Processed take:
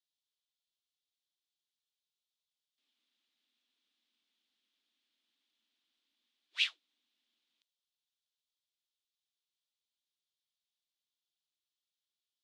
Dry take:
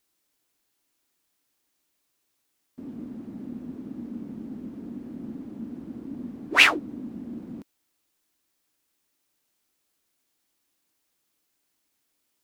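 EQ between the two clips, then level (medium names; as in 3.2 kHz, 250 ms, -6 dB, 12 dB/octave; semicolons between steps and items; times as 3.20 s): ladder band-pass 3.9 kHz, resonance 60%; -4.5 dB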